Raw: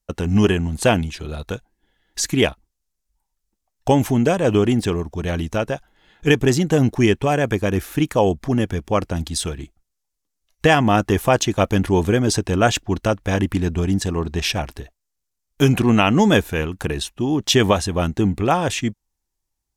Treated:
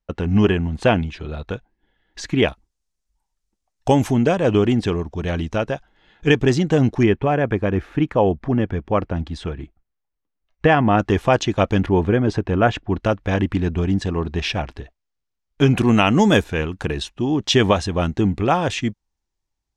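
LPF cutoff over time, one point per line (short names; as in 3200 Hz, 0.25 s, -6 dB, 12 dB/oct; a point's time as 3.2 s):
3200 Hz
from 2.48 s 8500 Hz
from 4.13 s 4900 Hz
from 7.03 s 2200 Hz
from 10.99 s 4300 Hz
from 11.86 s 2200 Hz
from 13 s 3800 Hz
from 15.78 s 9900 Hz
from 16.44 s 5400 Hz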